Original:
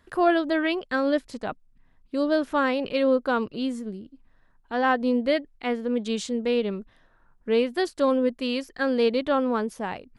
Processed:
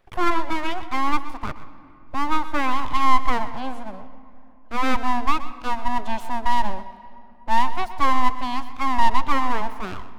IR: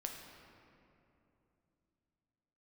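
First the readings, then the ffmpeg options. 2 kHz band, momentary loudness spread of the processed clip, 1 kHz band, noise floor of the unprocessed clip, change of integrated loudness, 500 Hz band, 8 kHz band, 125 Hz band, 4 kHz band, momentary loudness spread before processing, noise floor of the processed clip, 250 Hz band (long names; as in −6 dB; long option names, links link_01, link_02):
+1.0 dB, 13 LU, +8.5 dB, −61 dBFS, +0.5 dB, −11.5 dB, +2.0 dB, can't be measured, +0.5 dB, 12 LU, −45 dBFS, −5.0 dB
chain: -filter_complex "[0:a]equalizer=frequency=250:width_type=o:width=1:gain=-5,equalizer=frequency=500:width_type=o:width=1:gain=12,equalizer=frequency=1000:width_type=o:width=1:gain=-4,equalizer=frequency=4000:width_type=o:width=1:gain=-5,equalizer=frequency=8000:width_type=o:width=1:gain=-9,aeval=exprs='abs(val(0))':channel_layout=same,asplit=2[link_01][link_02];[1:a]atrim=start_sample=2205,adelay=125[link_03];[link_02][link_03]afir=irnorm=-1:irlink=0,volume=-11.5dB[link_04];[link_01][link_04]amix=inputs=2:normalize=0"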